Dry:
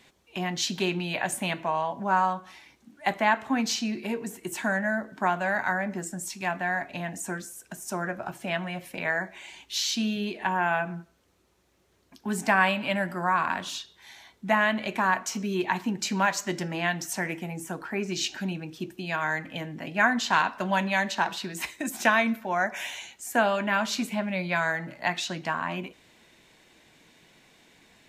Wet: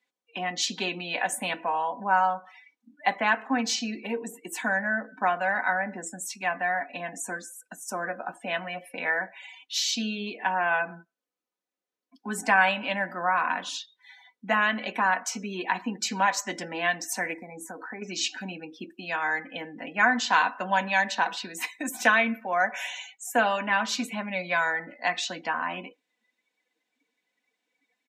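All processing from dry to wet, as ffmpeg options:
-filter_complex "[0:a]asettb=1/sr,asplit=3[a][b][c];[a]atrim=end=17.334[d];[b]atrim=start=17.33:end=18.02,asetpts=PTS-STARTPTS,afade=t=in:d=0.004:c=qsin,afade=t=out:st=0.686:d=0.004:c=qsin,asuperstop=centerf=3000:order=8:qfactor=2.2,acompressor=threshold=-34dB:ratio=2.5:attack=3.2:release=140:knee=1:detection=peak[e];[c]atrim=start=18.016[f];[d][e]acrossfade=d=0.004:c1=hsin:c2=qsin[g];[g][f]acrossfade=d=0.004:c1=qsin:c2=hsin,highpass=300,aecho=1:1:4:0.56,afftdn=nr=24:nf=-45"

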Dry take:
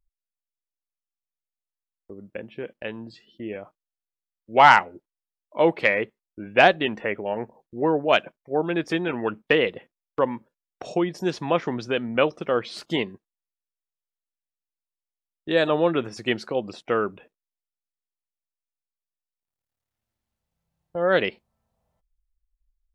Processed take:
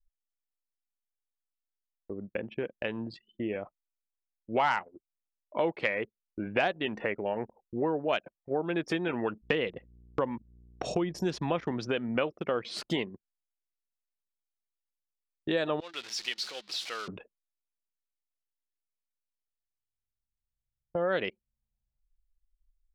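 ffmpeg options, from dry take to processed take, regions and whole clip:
-filter_complex "[0:a]asettb=1/sr,asplit=3[a][b][c];[a]atrim=end=9.424[d];[b]atrim=start=9.42:end=11.72,asetpts=PTS-STARTPTS,afade=t=in:d=0.004:c=qsin,afade=t=out:st=2.296:d=0.004:c=qsin,bass=f=250:g=4,treble=f=4k:g=3,aeval=exprs='val(0)+0.002*(sin(2*PI*60*n/s)+sin(2*PI*2*60*n/s)/2+sin(2*PI*3*60*n/s)/3+sin(2*PI*4*60*n/s)/4+sin(2*PI*5*60*n/s)/5)':c=same[e];[c]atrim=start=11.716[f];[d][e]acrossfade=d=0.004:c1=hsin:c2=qsin[g];[g][f]acrossfade=d=0.004:c1=qsin:c2=hsin,asettb=1/sr,asplit=3[h][i][j];[h]atrim=end=15.804[k];[i]atrim=start=15.8:end=17.08,asetpts=PTS-STARTPTS,afade=t=in:d=0.004:c=qsin,afade=t=out:st=1.276:d=0.004:c=qsin,aeval=exprs='val(0)+0.5*0.0316*sgn(val(0))':c=same,bandpass=f=4.2k:t=q:w=1.7[l];[j]atrim=start=17.076[m];[k][l]acrossfade=d=0.004:c1=hsin:c2=qsin[n];[n][m]acrossfade=d=0.004:c1=qsin:c2=hsin,acompressor=threshold=-32dB:ratio=3,anlmdn=0.01,volume=2.5dB"

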